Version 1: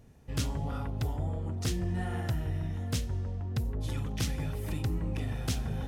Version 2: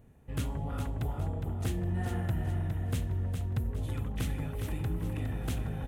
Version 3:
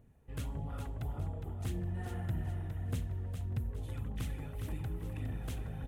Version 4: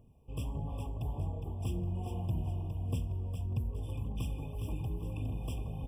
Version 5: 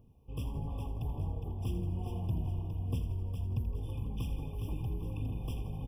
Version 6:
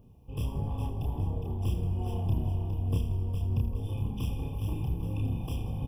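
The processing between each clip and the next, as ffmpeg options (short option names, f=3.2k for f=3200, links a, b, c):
-filter_complex "[0:a]equalizer=f=5.2k:w=1.5:g=-13,asplit=2[a][b];[b]aecho=0:1:411|822|1233|1644|2055:0.473|0.185|0.072|0.0281|0.0109[c];[a][c]amix=inputs=2:normalize=0,volume=-1.5dB"
-af "aphaser=in_gain=1:out_gain=1:delay=2.7:decay=0.31:speed=1.7:type=triangular,volume=-7dB"
-af "afftfilt=real='re*eq(mod(floor(b*sr/1024/1200),2),0)':imag='im*eq(mod(floor(b*sr/1024/1200),2),0)':win_size=1024:overlap=0.75,volume=2dB"
-filter_complex "[0:a]equalizer=f=630:t=o:w=0.33:g=-6,equalizer=f=2k:t=o:w=0.33:g=-11,equalizer=f=8k:t=o:w=0.33:g=-11,asplit=8[a][b][c][d][e][f][g][h];[b]adelay=82,afreqshift=-33,volume=-11.5dB[i];[c]adelay=164,afreqshift=-66,volume=-15.8dB[j];[d]adelay=246,afreqshift=-99,volume=-20.1dB[k];[e]adelay=328,afreqshift=-132,volume=-24.4dB[l];[f]adelay=410,afreqshift=-165,volume=-28.7dB[m];[g]adelay=492,afreqshift=-198,volume=-33dB[n];[h]adelay=574,afreqshift=-231,volume=-37.3dB[o];[a][i][j][k][l][m][n][o]amix=inputs=8:normalize=0"
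-filter_complex "[0:a]asplit=2[a][b];[b]aeval=exprs='clip(val(0),-1,0.00501)':c=same,volume=-7dB[c];[a][c]amix=inputs=2:normalize=0,asplit=2[d][e];[e]adelay=30,volume=-2.5dB[f];[d][f]amix=inputs=2:normalize=0,volume=1dB"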